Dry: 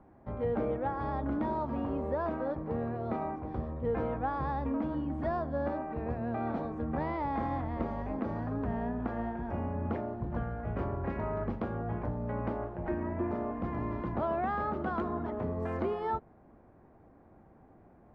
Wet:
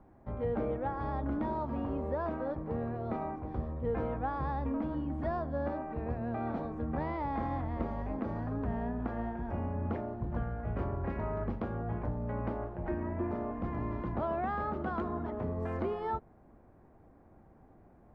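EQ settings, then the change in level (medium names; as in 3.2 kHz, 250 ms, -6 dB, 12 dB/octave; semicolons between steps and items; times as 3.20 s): bass shelf 66 Hz +7 dB; -2.0 dB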